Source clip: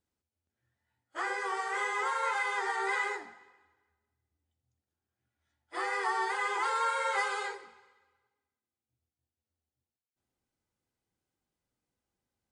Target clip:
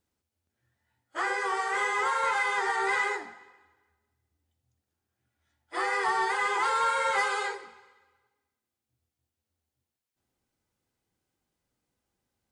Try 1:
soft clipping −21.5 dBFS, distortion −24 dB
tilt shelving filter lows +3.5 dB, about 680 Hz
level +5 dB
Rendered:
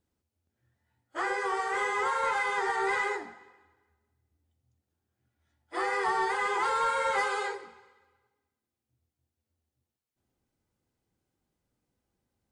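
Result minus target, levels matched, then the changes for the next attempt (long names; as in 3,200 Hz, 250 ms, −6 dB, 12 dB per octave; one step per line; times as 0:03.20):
500 Hz band +3.0 dB
remove: tilt shelving filter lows +3.5 dB, about 680 Hz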